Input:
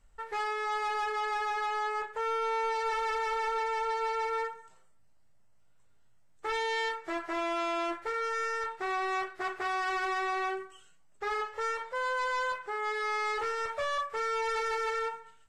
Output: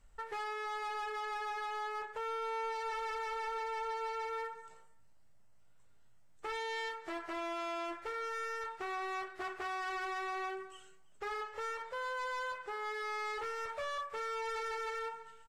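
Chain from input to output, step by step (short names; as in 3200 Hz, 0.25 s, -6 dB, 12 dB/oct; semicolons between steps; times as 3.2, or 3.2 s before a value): compressor 3:1, threshold -39 dBFS, peak gain reduction 7.5 dB; hard clip -35.5 dBFS, distortion -23 dB; on a send: echo 0.324 s -22.5 dB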